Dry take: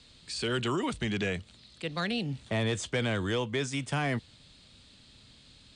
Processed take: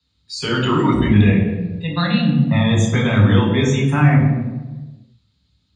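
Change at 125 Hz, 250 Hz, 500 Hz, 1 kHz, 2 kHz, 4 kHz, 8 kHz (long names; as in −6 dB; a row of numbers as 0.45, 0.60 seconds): +20.0, +17.5, +10.5, +13.0, +10.5, +9.0, +7.5 decibels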